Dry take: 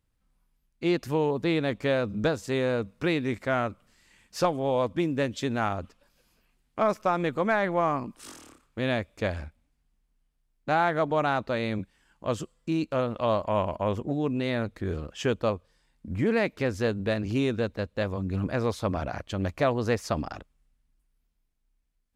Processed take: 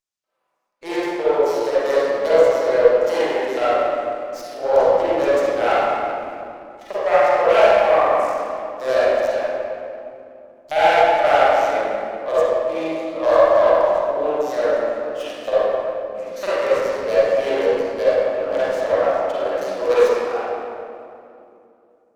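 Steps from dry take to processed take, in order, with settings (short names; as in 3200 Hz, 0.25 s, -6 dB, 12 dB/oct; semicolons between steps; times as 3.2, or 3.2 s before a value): self-modulated delay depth 0.23 ms; HPF 190 Hz 6 dB/oct; LFO high-pass square 2.1 Hz 570–6300 Hz; reverb RT60 2.7 s, pre-delay 38 ms, DRR -13.5 dB; running maximum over 3 samples; gain -3.5 dB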